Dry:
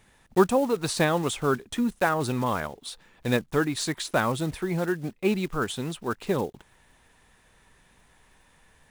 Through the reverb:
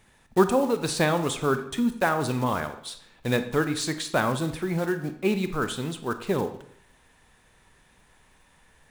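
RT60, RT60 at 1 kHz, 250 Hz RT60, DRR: 0.70 s, 0.70 s, 0.70 s, 9.0 dB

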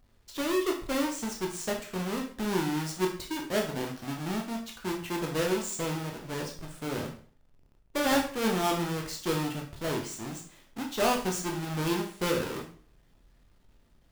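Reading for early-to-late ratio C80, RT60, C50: 12.0 dB, 0.45 s, 8.0 dB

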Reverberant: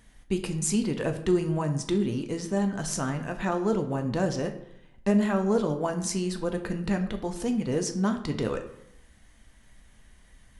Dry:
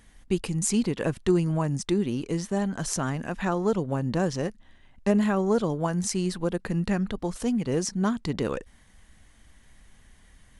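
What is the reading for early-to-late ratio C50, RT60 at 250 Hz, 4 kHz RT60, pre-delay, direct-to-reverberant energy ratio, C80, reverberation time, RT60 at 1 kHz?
10.5 dB, 0.85 s, 0.50 s, 3 ms, 5.0 dB, 13.5 dB, 0.80 s, 0.80 s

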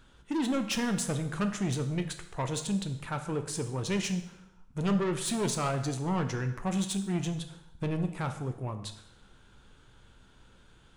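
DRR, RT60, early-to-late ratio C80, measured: 6.5 dB, 0.80 s, 12.5 dB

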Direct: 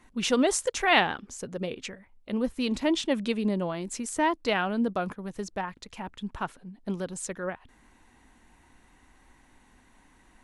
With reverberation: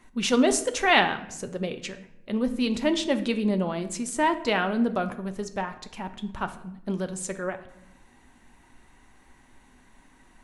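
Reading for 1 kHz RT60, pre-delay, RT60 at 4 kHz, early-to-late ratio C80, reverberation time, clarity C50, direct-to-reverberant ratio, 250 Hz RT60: 0.75 s, 5 ms, 0.55 s, 16.0 dB, 0.80 s, 13.0 dB, 8.0 dB, 1.2 s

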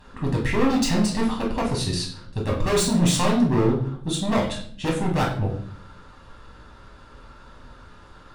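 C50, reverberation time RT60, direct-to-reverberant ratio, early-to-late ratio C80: 7.0 dB, 0.55 s, −3.0 dB, 10.5 dB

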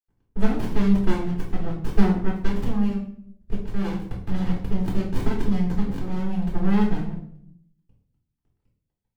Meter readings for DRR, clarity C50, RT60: −4.0 dB, 5.5 dB, 0.65 s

